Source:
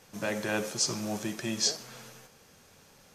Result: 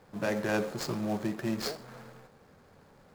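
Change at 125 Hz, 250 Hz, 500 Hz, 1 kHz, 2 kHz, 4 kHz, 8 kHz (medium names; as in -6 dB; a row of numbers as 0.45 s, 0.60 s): +2.5 dB, +2.5 dB, +2.0 dB, +1.5 dB, -1.0 dB, -9.0 dB, -14.0 dB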